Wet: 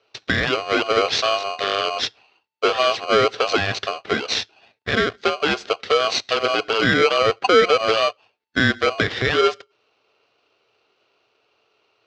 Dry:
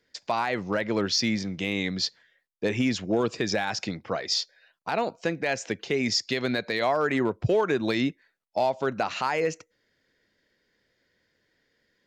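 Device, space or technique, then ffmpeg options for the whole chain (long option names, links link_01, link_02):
ring modulator pedal into a guitar cabinet: -af "aeval=exprs='val(0)*sgn(sin(2*PI*890*n/s))':channel_layout=same,highpass=91,equalizer=frequency=110:width_type=q:width=4:gain=6,equalizer=frequency=160:width_type=q:width=4:gain=-7,equalizer=frequency=440:width_type=q:width=4:gain=7,equalizer=frequency=970:width_type=q:width=4:gain=-7,lowpass=frequency=4600:width=0.5412,lowpass=frequency=4600:width=1.3066,volume=7dB"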